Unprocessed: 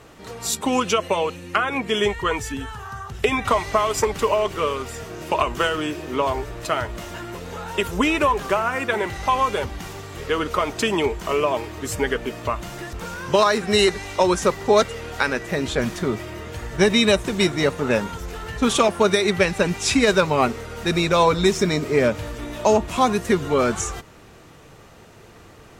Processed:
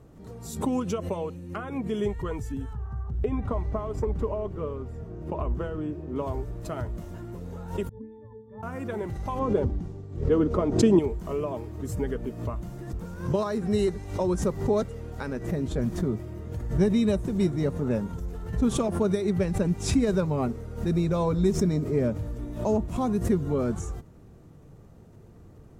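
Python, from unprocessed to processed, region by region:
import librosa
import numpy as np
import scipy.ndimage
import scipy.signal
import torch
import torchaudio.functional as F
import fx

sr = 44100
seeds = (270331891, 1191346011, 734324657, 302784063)

y = fx.chain(x, sr, fx.lowpass(hz=1400.0, slope=6),
    fx.peak_eq(hz=62.0, db=13.0, octaves=0.2), at=(2.73, 6.16))
y = fx.chain(y, sr, fx.air_absorb(metres=240.0),
    fx.octave_resonator(note='A', decay_s=0.57), at=(7.89, 8.63))
y = fx.chain(y, sr, fx.lowpass(hz=6900.0, slope=12),
    fx.peak_eq(hz=310.0, db=10.5, octaves=2.5),
    fx.band_widen(depth_pct=70), at=(9.39, 10.99))
y = fx.curve_eq(y, sr, hz=(170.0, 2700.0, 12000.0), db=(0, -23, -14))
y = fx.pre_swell(y, sr, db_per_s=100.0)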